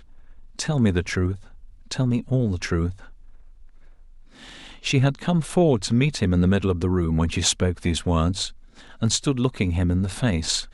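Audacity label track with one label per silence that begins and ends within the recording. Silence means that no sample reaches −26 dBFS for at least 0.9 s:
2.910000	4.860000	silence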